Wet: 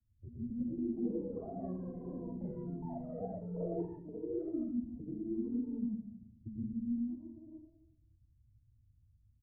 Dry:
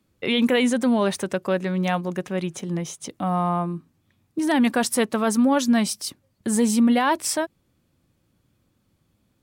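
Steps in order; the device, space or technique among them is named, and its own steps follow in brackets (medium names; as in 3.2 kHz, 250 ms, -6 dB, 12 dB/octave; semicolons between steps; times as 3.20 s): spectral noise reduction 10 dB; club heard from the street (peak limiter -22.5 dBFS, peak gain reduction 11 dB; low-pass 130 Hz 24 dB/octave; reverberation RT60 1.0 s, pre-delay 93 ms, DRR -4.5 dB); comb 3 ms, depth 74%; ever faster or slower copies 426 ms, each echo +6 st, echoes 3; trim +6.5 dB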